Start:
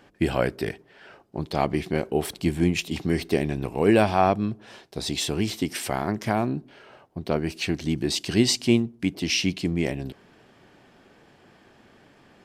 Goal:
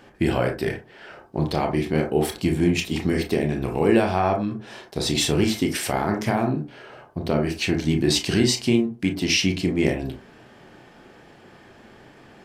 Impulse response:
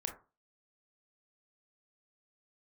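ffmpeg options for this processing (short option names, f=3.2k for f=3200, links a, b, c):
-filter_complex "[0:a]alimiter=limit=-14dB:level=0:latency=1:release=484[a];[1:a]atrim=start_sample=2205,afade=t=out:st=0.18:d=0.01,atrim=end_sample=8379[b];[a][b]afir=irnorm=-1:irlink=0,volume=6.5dB"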